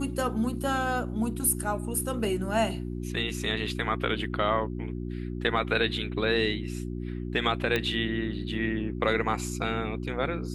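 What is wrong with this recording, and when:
mains hum 60 Hz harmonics 6 −34 dBFS
0:07.76: click −13 dBFS

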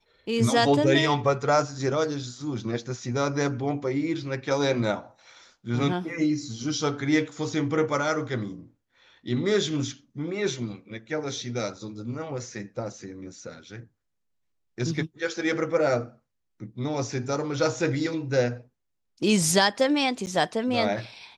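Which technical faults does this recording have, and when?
0:20.26–0:20.27: drop-out 9.6 ms

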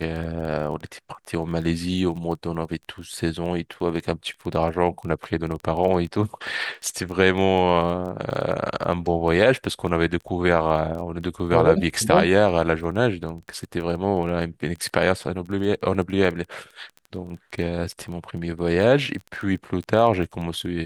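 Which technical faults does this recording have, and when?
surface crackle 13 per second −30 dBFS

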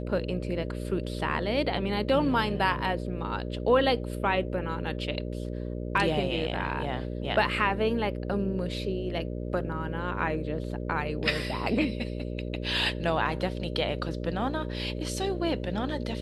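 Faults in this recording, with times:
mains buzz 60 Hz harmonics 10 −34 dBFS

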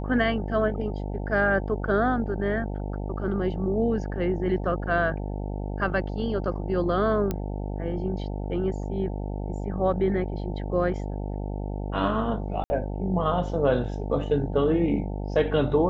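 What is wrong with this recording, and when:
mains buzz 50 Hz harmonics 18 −31 dBFS
0:07.31: click −14 dBFS
0:12.64–0:12.70: drop-out 60 ms

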